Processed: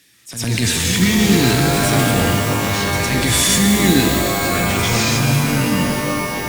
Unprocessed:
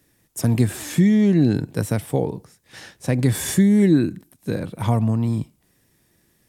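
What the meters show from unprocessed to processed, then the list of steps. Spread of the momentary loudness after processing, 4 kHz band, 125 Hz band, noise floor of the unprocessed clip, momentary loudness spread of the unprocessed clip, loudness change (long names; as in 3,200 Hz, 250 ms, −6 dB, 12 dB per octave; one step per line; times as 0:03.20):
6 LU, +19.0 dB, +3.0 dB, −64 dBFS, 13 LU, +4.5 dB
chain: meter weighting curve D
on a send: backwards echo 105 ms −8.5 dB
on the sum: delay with pitch and tempo change per echo 139 ms, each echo −6 semitones, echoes 3, each echo −6 dB
transient designer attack −11 dB, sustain +4 dB
parametric band 540 Hz −6.5 dB 2.4 octaves
reverb with rising layers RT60 3.6 s, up +12 semitones, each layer −2 dB, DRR 4 dB
level +5 dB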